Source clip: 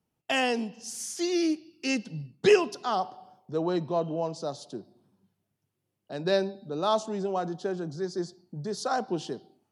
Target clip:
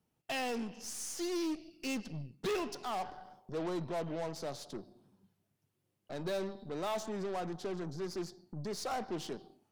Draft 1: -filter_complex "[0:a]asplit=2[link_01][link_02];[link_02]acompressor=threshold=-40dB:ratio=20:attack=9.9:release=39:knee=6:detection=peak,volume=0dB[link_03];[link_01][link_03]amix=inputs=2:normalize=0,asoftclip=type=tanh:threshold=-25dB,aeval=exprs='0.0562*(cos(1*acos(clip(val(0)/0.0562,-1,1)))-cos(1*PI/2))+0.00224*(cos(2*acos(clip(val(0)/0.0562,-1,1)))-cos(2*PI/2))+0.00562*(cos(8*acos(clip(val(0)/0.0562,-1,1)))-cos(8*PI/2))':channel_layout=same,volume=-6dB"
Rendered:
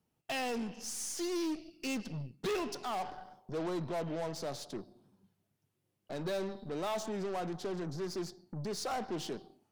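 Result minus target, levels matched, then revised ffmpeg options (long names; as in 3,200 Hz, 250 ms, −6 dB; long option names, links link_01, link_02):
downward compressor: peak gain reduction −11.5 dB
-filter_complex "[0:a]asplit=2[link_01][link_02];[link_02]acompressor=threshold=-52dB:ratio=20:attack=9.9:release=39:knee=6:detection=peak,volume=0dB[link_03];[link_01][link_03]amix=inputs=2:normalize=0,asoftclip=type=tanh:threshold=-25dB,aeval=exprs='0.0562*(cos(1*acos(clip(val(0)/0.0562,-1,1)))-cos(1*PI/2))+0.00224*(cos(2*acos(clip(val(0)/0.0562,-1,1)))-cos(2*PI/2))+0.00562*(cos(8*acos(clip(val(0)/0.0562,-1,1)))-cos(8*PI/2))':channel_layout=same,volume=-6dB"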